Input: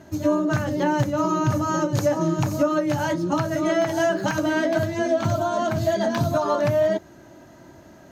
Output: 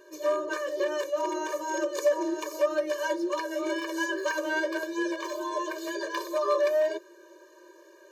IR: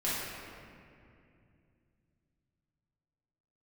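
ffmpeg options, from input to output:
-af "aeval=exprs='0.2*(abs(mod(val(0)/0.2+3,4)-2)-1)':channel_layout=same,afftfilt=real='re*eq(mod(floor(b*sr/1024/310),2),1)':imag='im*eq(mod(floor(b*sr/1024/310),2),1)':win_size=1024:overlap=0.75,volume=-1dB"

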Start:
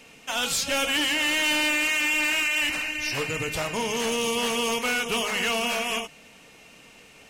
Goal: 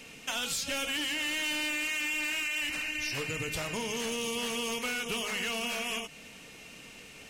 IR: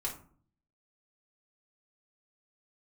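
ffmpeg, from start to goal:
-af "equalizer=frequency=820:width=0.84:gain=-5,acompressor=threshold=-34dB:ratio=6,volume=2.5dB"

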